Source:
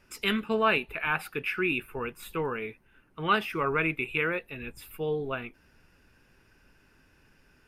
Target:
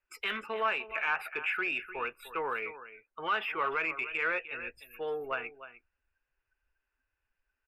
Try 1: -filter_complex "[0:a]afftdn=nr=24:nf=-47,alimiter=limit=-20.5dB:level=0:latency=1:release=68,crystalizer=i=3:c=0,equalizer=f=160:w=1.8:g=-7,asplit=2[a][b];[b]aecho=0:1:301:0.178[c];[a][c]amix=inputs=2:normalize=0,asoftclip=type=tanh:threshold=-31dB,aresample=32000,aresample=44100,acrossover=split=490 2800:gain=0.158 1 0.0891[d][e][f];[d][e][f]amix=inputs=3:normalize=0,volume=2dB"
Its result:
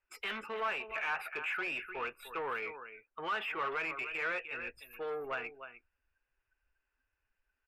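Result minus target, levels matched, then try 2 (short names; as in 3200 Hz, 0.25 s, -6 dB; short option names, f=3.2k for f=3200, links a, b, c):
soft clip: distortion +9 dB
-filter_complex "[0:a]afftdn=nr=24:nf=-47,alimiter=limit=-20.5dB:level=0:latency=1:release=68,crystalizer=i=3:c=0,equalizer=f=160:w=1.8:g=-7,asplit=2[a][b];[b]aecho=0:1:301:0.178[c];[a][c]amix=inputs=2:normalize=0,asoftclip=type=tanh:threshold=-22dB,aresample=32000,aresample=44100,acrossover=split=490 2800:gain=0.158 1 0.0891[d][e][f];[d][e][f]amix=inputs=3:normalize=0,volume=2dB"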